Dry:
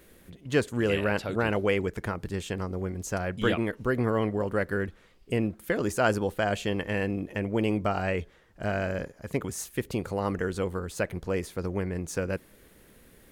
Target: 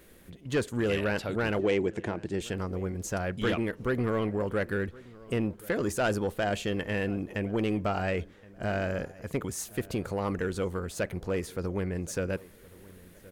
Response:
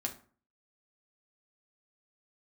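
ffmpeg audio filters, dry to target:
-filter_complex "[0:a]asoftclip=type=tanh:threshold=0.1,asettb=1/sr,asplit=3[s0][s1][s2];[s0]atrim=end=1.594[s3];[s1]atrim=start=1.59:end=2.41,asetpts=PTS-STARTPTS,afade=t=in:d=0.004:c=qsin,afade=t=out:st=0.816:d=0.004:c=qsin,highpass=110,equalizer=f=340:t=q:w=4:g=8,equalizer=f=700:t=q:w=4:g=4,equalizer=f=1300:t=q:w=4:g=-8,equalizer=f=4900:t=q:w=4:g=-4,lowpass=f=8300:w=0.5412,lowpass=f=8300:w=1.3066[s4];[s2]atrim=start=2.406[s5];[s3][s4]acrossfade=d=0.004:c1=hsin:c2=qsin[s6];[s6][s5]acrossfade=d=0.004:c1=qsin:c2=hsin,asplit=2[s7][s8];[s8]adelay=1072,lowpass=f=1900:p=1,volume=0.0891,asplit=2[s9][s10];[s10]adelay=1072,lowpass=f=1900:p=1,volume=0.34,asplit=2[s11][s12];[s12]adelay=1072,lowpass=f=1900:p=1,volume=0.34[s13];[s9][s11][s13]amix=inputs=3:normalize=0[s14];[s7][s14]amix=inputs=2:normalize=0"

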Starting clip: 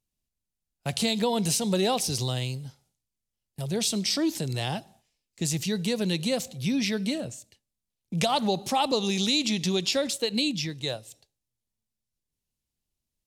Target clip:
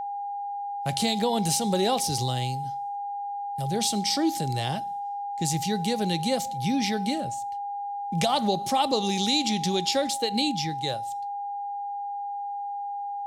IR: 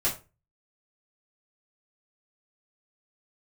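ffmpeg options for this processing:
-filter_complex "[0:a]aeval=exprs='val(0)+0.0316*sin(2*PI*810*n/s)':c=same,bandreject=f=2600:w=13,asplit=2[s0][s1];[1:a]atrim=start_sample=2205[s2];[s1][s2]afir=irnorm=-1:irlink=0,volume=0.0473[s3];[s0][s3]amix=inputs=2:normalize=0"

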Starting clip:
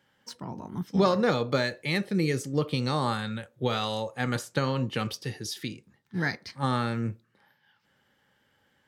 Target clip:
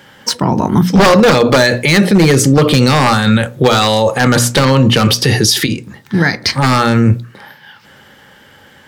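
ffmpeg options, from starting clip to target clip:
-filter_complex "[0:a]asettb=1/sr,asplit=3[s0][s1][s2];[s0]atrim=end=5.664[s3];[s1]atrim=start=5.66:end=6.44,asetpts=PTS-STARTPTS,afade=t=in:d=0.004:c=qsin,afade=t=out:st=0.776:d=0.004:c=qsin,acompressor=threshold=0.00501:ratio=2[s4];[s2]atrim=start=6.436[s5];[s3][s4]acrossfade=d=0.004:c1=hsin:c2=qsin[s6];[s6][s5]acrossfade=d=0.004:c1=qsin:c2=hsin,bandreject=f=60:t=h:w=6,bandreject=f=120:t=h:w=6,bandreject=f=180:t=h:w=6,bandreject=f=240:t=h:w=6,bandreject=f=300:t=h:w=6,aeval=exprs='0.0944*(abs(mod(val(0)/0.0944+3,4)-2)-1)':c=same,dynaudnorm=f=280:g=13:m=1.5,alimiter=level_in=23.7:limit=0.891:release=50:level=0:latency=1,volume=0.891"

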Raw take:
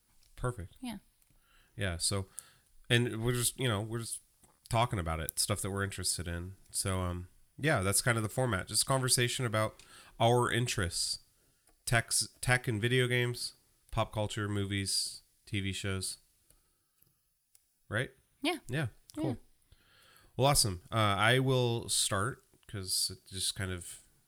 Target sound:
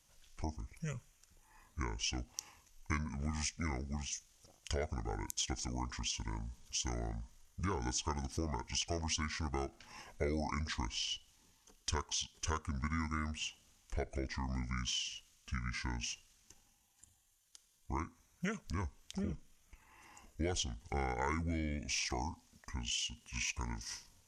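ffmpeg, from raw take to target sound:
-af "acompressor=threshold=0.01:ratio=3,asetrate=27781,aresample=44100,atempo=1.5874,volume=1.41"

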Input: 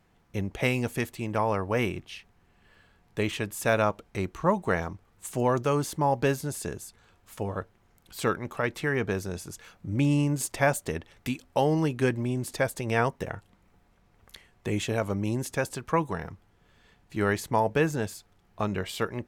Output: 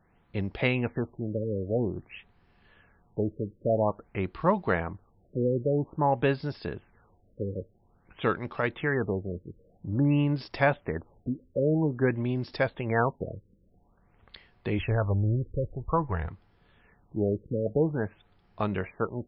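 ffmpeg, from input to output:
-filter_complex "[0:a]asplit=3[s0][s1][s2];[s0]afade=t=out:st=14.78:d=0.02[s3];[s1]asubboost=boost=9:cutoff=73,afade=t=in:st=14.78:d=0.02,afade=t=out:st=16.28:d=0.02[s4];[s2]afade=t=in:st=16.28:d=0.02[s5];[s3][s4][s5]amix=inputs=3:normalize=0,afftfilt=real='re*lt(b*sr/1024,550*pow(5600/550,0.5+0.5*sin(2*PI*0.5*pts/sr)))':imag='im*lt(b*sr/1024,550*pow(5600/550,0.5+0.5*sin(2*PI*0.5*pts/sr)))':win_size=1024:overlap=0.75"

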